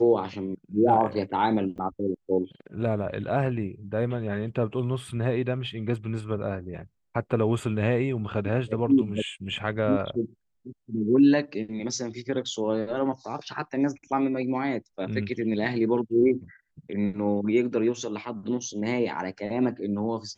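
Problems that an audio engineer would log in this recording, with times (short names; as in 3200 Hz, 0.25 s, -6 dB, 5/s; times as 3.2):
1.78 gap 4.8 ms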